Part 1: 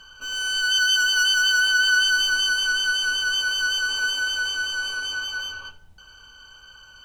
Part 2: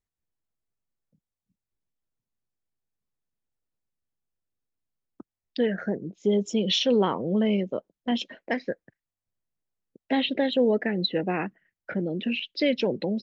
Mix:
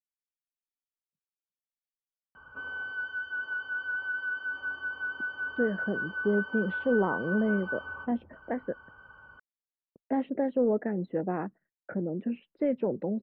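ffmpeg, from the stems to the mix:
ffmpeg -i stem1.wav -i stem2.wav -filter_complex "[0:a]highpass=80,acompressor=threshold=-27dB:ratio=6,adelay=2350,volume=1.5dB[link_01];[1:a]agate=range=-33dB:threshold=-50dB:ratio=3:detection=peak,acontrast=71,volume=-10dB[link_02];[link_01][link_02]amix=inputs=2:normalize=0,lowpass=frequency=1400:width=0.5412,lowpass=frequency=1400:width=1.3066" out.wav

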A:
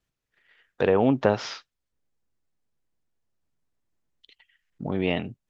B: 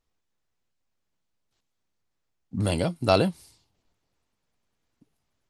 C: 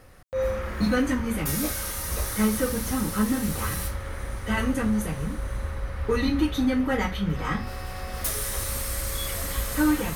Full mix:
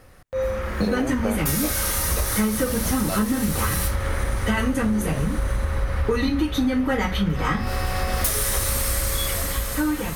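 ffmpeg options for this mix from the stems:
ffmpeg -i stem1.wav -i stem2.wav -i stem3.wav -filter_complex "[0:a]lowpass=1800,volume=-1dB[link_01];[1:a]volume=-7dB[link_02];[2:a]dynaudnorm=framelen=120:gausssize=17:maxgain=11.5dB,volume=1.5dB[link_03];[link_01][link_02][link_03]amix=inputs=3:normalize=0,acompressor=threshold=-19dB:ratio=6" out.wav

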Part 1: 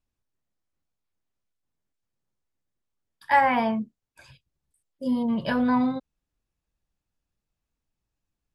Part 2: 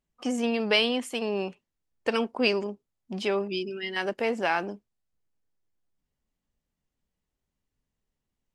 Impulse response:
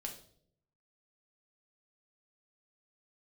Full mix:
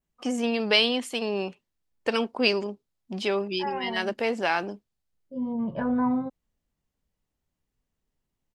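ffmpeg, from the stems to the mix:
-filter_complex "[0:a]lowpass=1200,adelay=300,volume=-2dB[link_01];[1:a]adynamicequalizer=threshold=0.00708:dfrequency=4100:dqfactor=1.8:tfrequency=4100:tqfactor=1.8:attack=5:release=100:ratio=0.375:range=3:mode=boostabove:tftype=bell,volume=0.5dB,asplit=2[link_02][link_03];[link_03]apad=whole_len=390048[link_04];[link_01][link_04]sidechaincompress=threshold=-34dB:ratio=8:attack=28:release=1080[link_05];[link_05][link_02]amix=inputs=2:normalize=0"

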